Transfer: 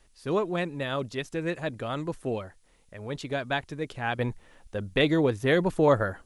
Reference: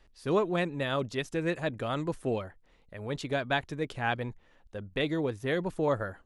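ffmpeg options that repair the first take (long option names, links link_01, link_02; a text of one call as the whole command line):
ffmpeg -i in.wav -af "agate=range=-21dB:threshold=-49dB,asetnsamples=nb_out_samples=441:pad=0,asendcmd='4.19 volume volume -7dB',volume=0dB" out.wav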